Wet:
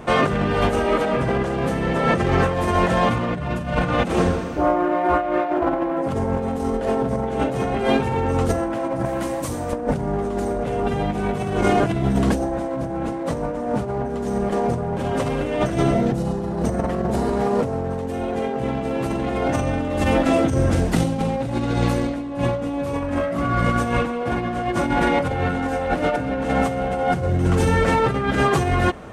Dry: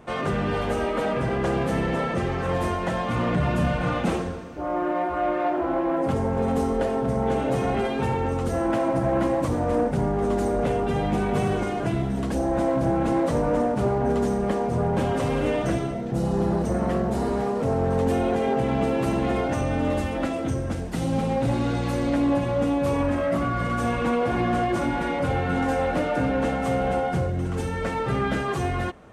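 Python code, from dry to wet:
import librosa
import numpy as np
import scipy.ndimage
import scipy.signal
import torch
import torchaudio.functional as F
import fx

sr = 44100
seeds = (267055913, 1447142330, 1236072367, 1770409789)

y = fx.pre_emphasis(x, sr, coefficient=0.8, at=(9.05, 9.73))
y = fx.over_compress(y, sr, threshold_db=-27.0, ratio=-0.5)
y = y * librosa.db_to_amplitude(7.0)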